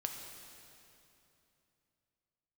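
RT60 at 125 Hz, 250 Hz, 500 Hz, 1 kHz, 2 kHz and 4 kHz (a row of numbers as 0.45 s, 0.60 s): 3.6 s, 3.3 s, 3.0 s, 2.8 s, 2.7 s, 2.5 s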